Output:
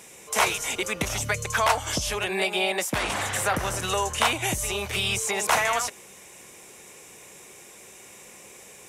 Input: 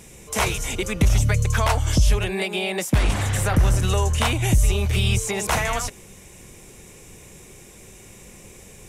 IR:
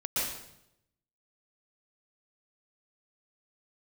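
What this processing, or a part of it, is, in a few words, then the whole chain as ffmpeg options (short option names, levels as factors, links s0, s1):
filter by subtraction: -filter_complex "[0:a]asplit=2[s0][s1];[s1]lowpass=870,volume=-1[s2];[s0][s2]amix=inputs=2:normalize=0,asettb=1/sr,asplit=3[s3][s4][s5];[s3]atrim=end=2.284[s6];[s4]atrim=start=2.28:end=2.72,asetpts=PTS-STARTPTS,afade=t=in:d=0.004:c=qsin,afade=t=out:st=0.436:d=0.004:c=qsin,asplit=2[s7][s8];[s8]adelay=16,volume=0.501[s9];[s7][s9]amix=inputs=2:normalize=0,atrim=end_sample=19404[s10];[s5]atrim=start=2.716[s11];[s6][s10]acrossfade=d=0.004:c1=hsin:c2=qsin[s12];[s12][s11]acrossfade=d=0.004:c1=qsin:c2=hsin"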